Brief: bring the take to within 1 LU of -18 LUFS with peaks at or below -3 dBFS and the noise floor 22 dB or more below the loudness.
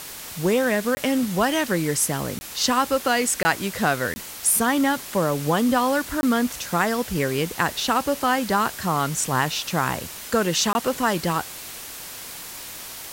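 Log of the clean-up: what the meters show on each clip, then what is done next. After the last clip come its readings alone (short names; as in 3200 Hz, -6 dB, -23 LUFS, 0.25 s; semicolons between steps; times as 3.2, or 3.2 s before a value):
dropouts 6; longest dropout 20 ms; noise floor -37 dBFS; noise floor target -45 dBFS; loudness -22.5 LUFS; peak -5.5 dBFS; loudness target -18.0 LUFS
-> interpolate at 0.95/2.39/3.43/4.14/6.21/10.73, 20 ms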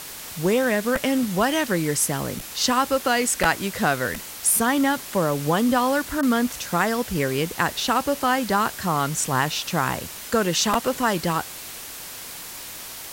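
dropouts 0; noise floor -37 dBFS; noise floor target -45 dBFS
-> noise print and reduce 8 dB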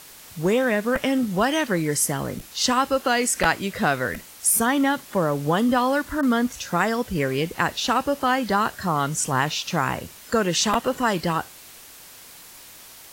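noise floor -45 dBFS; loudness -22.5 LUFS; peak -5.5 dBFS; loudness target -18.0 LUFS
-> gain +4.5 dB; limiter -3 dBFS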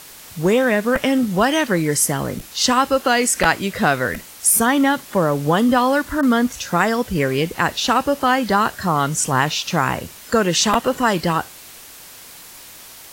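loudness -18.0 LUFS; peak -3.0 dBFS; noise floor -41 dBFS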